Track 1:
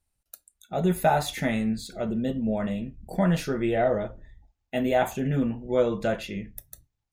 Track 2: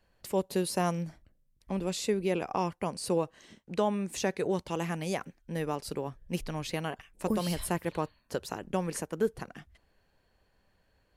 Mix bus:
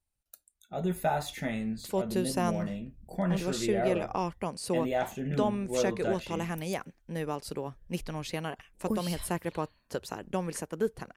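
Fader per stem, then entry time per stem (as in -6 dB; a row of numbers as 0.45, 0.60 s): -7.0, -1.0 dB; 0.00, 1.60 s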